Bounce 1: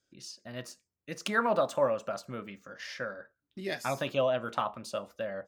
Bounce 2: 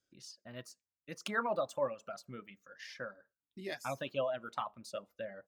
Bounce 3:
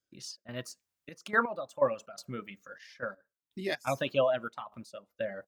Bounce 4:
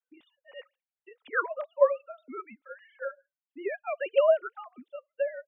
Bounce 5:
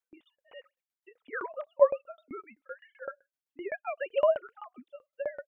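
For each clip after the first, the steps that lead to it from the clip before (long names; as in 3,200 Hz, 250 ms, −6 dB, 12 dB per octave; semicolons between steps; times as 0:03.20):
reverb reduction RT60 1.7 s; level −6 dB
gate pattern ".xx.xxxxx..x.." 124 BPM −12 dB; level +8 dB
three sine waves on the formant tracks; level +3.5 dB
shaped tremolo saw down 7.8 Hz, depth 100%; level +3 dB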